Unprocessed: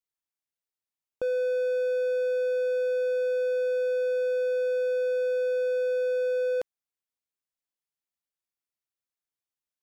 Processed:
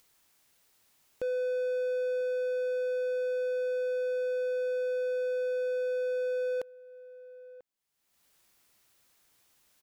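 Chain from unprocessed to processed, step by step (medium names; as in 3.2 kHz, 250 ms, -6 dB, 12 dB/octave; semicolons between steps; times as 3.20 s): echo from a far wall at 170 m, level -20 dB; upward compressor, threshold -41 dBFS; trim -4 dB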